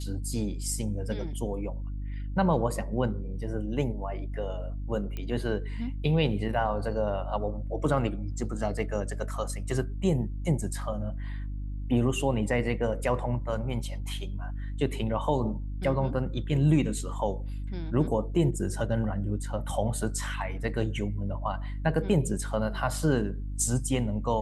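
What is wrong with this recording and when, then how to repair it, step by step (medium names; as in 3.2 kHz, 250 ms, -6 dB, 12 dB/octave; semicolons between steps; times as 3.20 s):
hum 50 Hz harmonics 6 -34 dBFS
5.17 s: pop -22 dBFS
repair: de-click; de-hum 50 Hz, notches 6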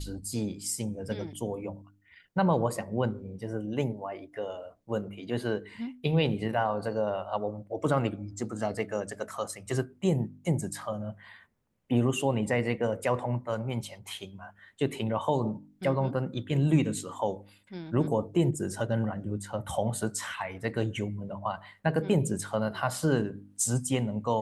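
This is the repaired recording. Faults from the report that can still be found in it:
5.17 s: pop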